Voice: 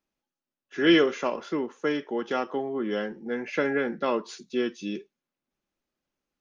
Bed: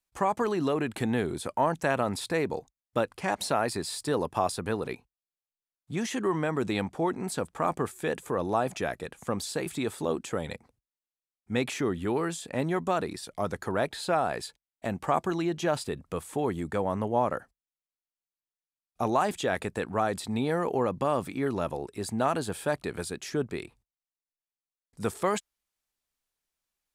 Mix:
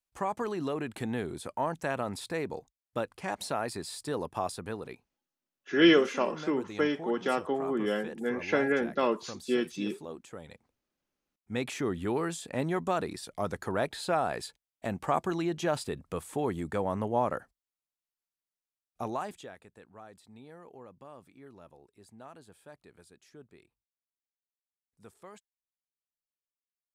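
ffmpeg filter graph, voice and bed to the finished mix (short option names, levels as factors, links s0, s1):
-filter_complex "[0:a]adelay=4950,volume=0.891[s0];[1:a]volume=1.88,afade=t=out:st=4.47:d=0.82:silence=0.421697,afade=t=in:st=10.89:d=1.1:silence=0.281838,afade=t=out:st=18.54:d=1.02:silence=0.0944061[s1];[s0][s1]amix=inputs=2:normalize=0"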